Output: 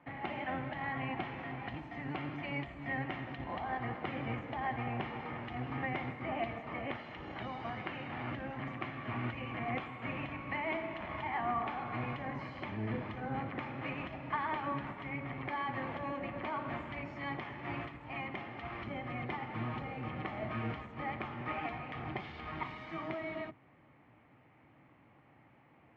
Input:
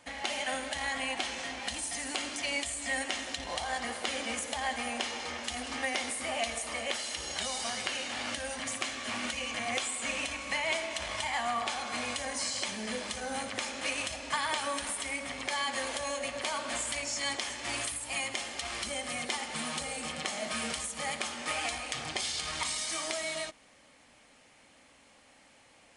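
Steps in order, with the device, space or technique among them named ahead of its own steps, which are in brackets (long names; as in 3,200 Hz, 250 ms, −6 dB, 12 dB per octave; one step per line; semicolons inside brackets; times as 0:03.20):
sub-octave bass pedal (sub-octave generator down 1 octave, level +2 dB; loudspeaker in its box 73–2,000 Hz, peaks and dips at 130 Hz +3 dB, 320 Hz +5 dB, 540 Hz −6 dB, 1,600 Hz −6 dB)
level −1 dB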